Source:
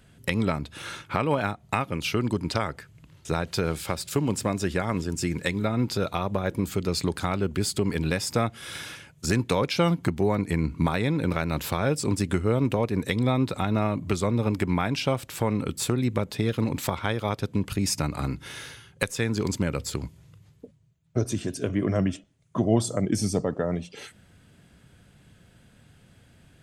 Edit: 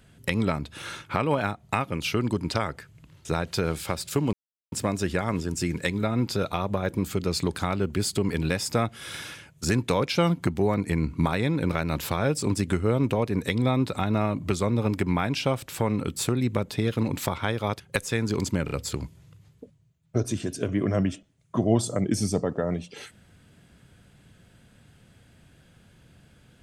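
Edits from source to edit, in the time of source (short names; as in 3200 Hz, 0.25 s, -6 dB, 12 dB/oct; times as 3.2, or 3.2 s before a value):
4.33 insert silence 0.39 s
17.41–18.87 cut
19.72 stutter 0.03 s, 3 plays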